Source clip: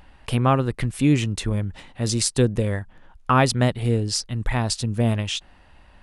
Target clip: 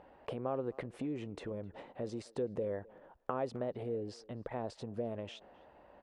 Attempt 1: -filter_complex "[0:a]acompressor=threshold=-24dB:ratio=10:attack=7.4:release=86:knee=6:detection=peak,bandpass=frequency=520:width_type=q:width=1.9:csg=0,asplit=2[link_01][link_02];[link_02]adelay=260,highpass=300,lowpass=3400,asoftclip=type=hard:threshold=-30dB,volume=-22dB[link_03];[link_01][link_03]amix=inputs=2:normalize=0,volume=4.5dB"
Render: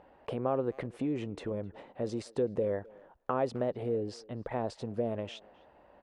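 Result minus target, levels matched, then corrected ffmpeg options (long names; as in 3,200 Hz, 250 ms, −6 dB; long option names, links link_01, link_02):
downward compressor: peak gain reduction −6 dB
-filter_complex "[0:a]acompressor=threshold=-30.5dB:ratio=10:attack=7.4:release=86:knee=6:detection=peak,bandpass=frequency=520:width_type=q:width=1.9:csg=0,asplit=2[link_01][link_02];[link_02]adelay=260,highpass=300,lowpass=3400,asoftclip=type=hard:threshold=-30dB,volume=-22dB[link_03];[link_01][link_03]amix=inputs=2:normalize=0,volume=4.5dB"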